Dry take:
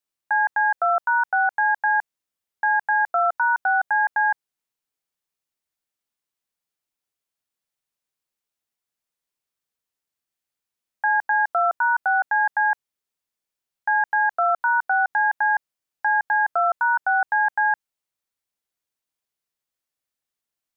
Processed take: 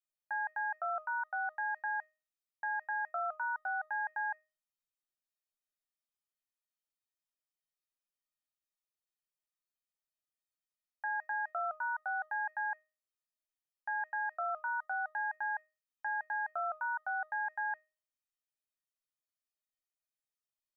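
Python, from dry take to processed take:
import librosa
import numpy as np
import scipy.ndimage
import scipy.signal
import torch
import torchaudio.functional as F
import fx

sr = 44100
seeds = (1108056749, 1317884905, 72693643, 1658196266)

y = fx.peak_eq(x, sr, hz=470.0, db=-7.0, octaves=0.66)
y = fx.comb_fb(y, sr, f0_hz=620.0, decay_s=0.31, harmonics='all', damping=0.0, mix_pct=90)
y = y * 10.0 ** (3.5 / 20.0)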